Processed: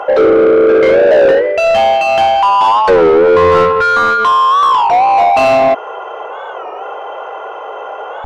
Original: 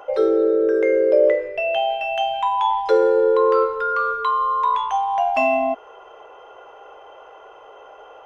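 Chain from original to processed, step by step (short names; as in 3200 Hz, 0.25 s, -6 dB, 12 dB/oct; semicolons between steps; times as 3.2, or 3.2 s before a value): overdrive pedal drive 25 dB, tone 1200 Hz, clips at -4.5 dBFS; record warp 33 1/3 rpm, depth 160 cents; gain +4 dB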